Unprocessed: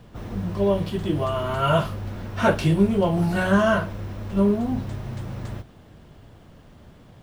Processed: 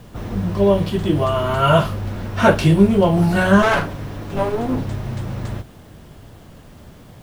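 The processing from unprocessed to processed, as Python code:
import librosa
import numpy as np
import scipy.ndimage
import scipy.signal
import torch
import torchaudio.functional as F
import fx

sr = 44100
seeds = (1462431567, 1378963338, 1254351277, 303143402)

y = fx.lower_of_two(x, sr, delay_ms=7.1, at=(3.62, 4.85))
y = fx.quant_dither(y, sr, seeds[0], bits=10, dither='none')
y = y * 10.0 ** (6.0 / 20.0)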